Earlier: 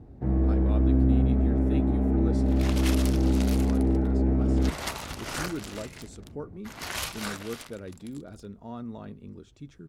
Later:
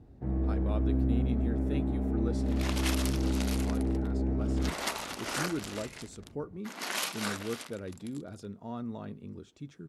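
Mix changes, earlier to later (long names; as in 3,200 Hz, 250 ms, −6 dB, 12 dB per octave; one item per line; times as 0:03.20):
first sound −6.5 dB
second sound: add linear-phase brick-wall band-pass 170–13,000 Hz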